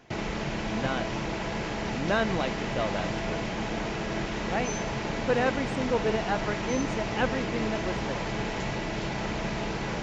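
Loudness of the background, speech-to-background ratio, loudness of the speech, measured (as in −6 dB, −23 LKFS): −31.5 LKFS, 0.0 dB, −31.5 LKFS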